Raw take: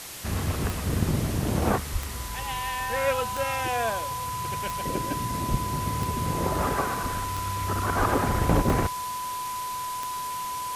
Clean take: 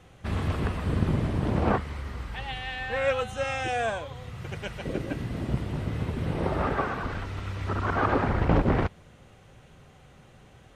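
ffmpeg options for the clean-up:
-filter_complex "[0:a]adeclick=t=4,bandreject=f=1000:w=30,asplit=3[s0][s1][s2];[s0]afade=t=out:st=1.92:d=0.02[s3];[s1]highpass=f=140:w=0.5412,highpass=f=140:w=1.3066,afade=t=in:st=1.92:d=0.02,afade=t=out:st=2.04:d=0.02[s4];[s2]afade=t=in:st=2.04:d=0.02[s5];[s3][s4][s5]amix=inputs=3:normalize=0,asplit=3[s6][s7][s8];[s6]afade=t=out:st=5.5:d=0.02[s9];[s7]highpass=f=140:w=0.5412,highpass=f=140:w=1.3066,afade=t=in:st=5.5:d=0.02,afade=t=out:st=5.62:d=0.02[s10];[s8]afade=t=in:st=5.62:d=0.02[s11];[s9][s10][s11]amix=inputs=3:normalize=0,asplit=3[s12][s13][s14];[s12]afade=t=out:st=7.98:d=0.02[s15];[s13]highpass=f=140:w=0.5412,highpass=f=140:w=1.3066,afade=t=in:st=7.98:d=0.02,afade=t=out:st=8.1:d=0.02[s16];[s14]afade=t=in:st=8.1:d=0.02[s17];[s15][s16][s17]amix=inputs=3:normalize=0,afwtdn=0.013"

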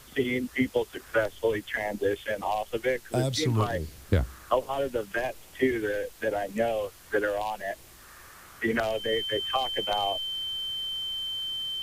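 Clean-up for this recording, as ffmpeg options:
-af "adeclick=t=4,bandreject=f=3100:w=30,afftdn=nr=24:nf=-50"

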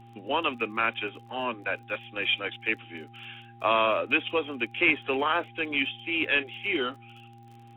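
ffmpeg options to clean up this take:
-af "adeclick=t=4,bandreject=f=117.6:t=h:w=4,bandreject=f=235.2:t=h:w=4,bandreject=f=352.8:t=h:w=4,bandreject=f=800:w=30"

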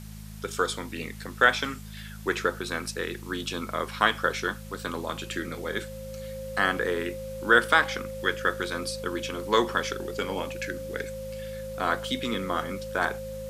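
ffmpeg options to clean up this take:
-af "bandreject=f=52.9:t=h:w=4,bandreject=f=105.8:t=h:w=4,bandreject=f=158.7:t=h:w=4,bandreject=f=211.6:t=h:w=4,bandreject=f=530:w=30,afwtdn=0.0028"

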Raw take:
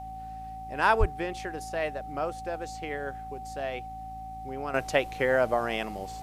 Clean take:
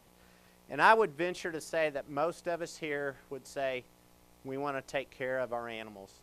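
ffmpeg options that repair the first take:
-filter_complex "[0:a]bandreject=f=55.4:t=h:w=4,bandreject=f=110.8:t=h:w=4,bandreject=f=166.2:t=h:w=4,bandreject=f=221.6:t=h:w=4,bandreject=f=277:t=h:w=4,bandreject=f=760:w=30,asplit=3[s0][s1][s2];[s0]afade=t=out:st=0.99:d=0.02[s3];[s1]highpass=f=140:w=0.5412,highpass=f=140:w=1.3066,afade=t=in:st=0.99:d=0.02,afade=t=out:st=1.11:d=0.02[s4];[s2]afade=t=in:st=1.11:d=0.02[s5];[s3][s4][s5]amix=inputs=3:normalize=0,asetnsamples=n=441:p=0,asendcmd='4.74 volume volume -10dB',volume=1"

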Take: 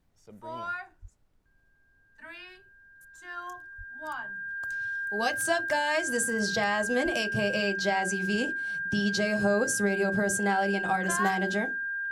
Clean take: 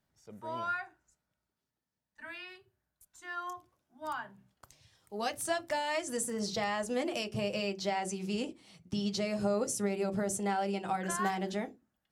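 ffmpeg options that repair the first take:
-filter_complex "[0:a]bandreject=f=1600:w=30,asplit=3[s0][s1][s2];[s0]afade=t=out:st=1.01:d=0.02[s3];[s1]highpass=f=140:w=0.5412,highpass=f=140:w=1.3066,afade=t=in:st=1.01:d=0.02,afade=t=out:st=1.13:d=0.02[s4];[s2]afade=t=in:st=1.13:d=0.02[s5];[s3][s4][s5]amix=inputs=3:normalize=0,asplit=3[s6][s7][s8];[s6]afade=t=out:st=3.77:d=0.02[s9];[s7]highpass=f=140:w=0.5412,highpass=f=140:w=1.3066,afade=t=in:st=3.77:d=0.02,afade=t=out:st=3.89:d=0.02[s10];[s8]afade=t=in:st=3.89:d=0.02[s11];[s9][s10][s11]amix=inputs=3:normalize=0,asplit=3[s12][s13][s14];[s12]afade=t=out:st=7.04:d=0.02[s15];[s13]highpass=f=140:w=0.5412,highpass=f=140:w=1.3066,afade=t=in:st=7.04:d=0.02,afade=t=out:st=7.16:d=0.02[s16];[s14]afade=t=in:st=7.16:d=0.02[s17];[s15][s16][s17]amix=inputs=3:normalize=0,agate=range=0.0891:threshold=0.00178,asetnsamples=n=441:p=0,asendcmd='4.48 volume volume -5dB',volume=1"

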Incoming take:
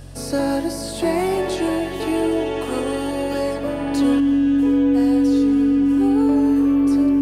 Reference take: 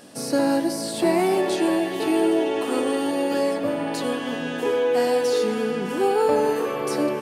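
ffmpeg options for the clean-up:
-af "bandreject=f=45.4:t=h:w=4,bandreject=f=90.8:t=h:w=4,bandreject=f=136.2:t=h:w=4,bandreject=f=280:w=30,asetnsamples=n=441:p=0,asendcmd='4.2 volume volume 7dB',volume=1"

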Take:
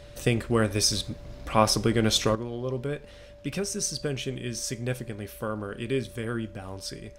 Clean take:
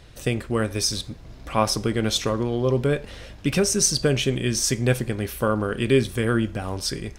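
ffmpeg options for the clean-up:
-af "bandreject=f=580:w=30,asetnsamples=n=441:p=0,asendcmd='2.35 volume volume 9.5dB',volume=1"

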